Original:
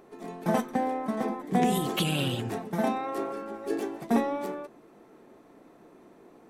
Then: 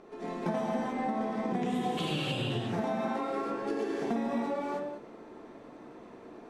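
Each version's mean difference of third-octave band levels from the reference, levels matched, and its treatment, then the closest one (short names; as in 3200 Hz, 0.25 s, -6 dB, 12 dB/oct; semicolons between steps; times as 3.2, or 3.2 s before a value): 6.5 dB: LPF 5800 Hz 12 dB/oct; non-linear reverb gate 0.34 s flat, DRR -4.5 dB; compressor 6:1, threshold -29 dBFS, peak gain reduction 12.5 dB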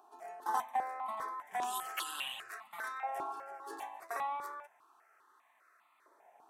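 10.0 dB: bell 490 Hz -9 dB 0.36 oct; LFO high-pass saw up 0.33 Hz 730–1500 Hz; step phaser 5 Hz 550–1600 Hz; gain -4.5 dB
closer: first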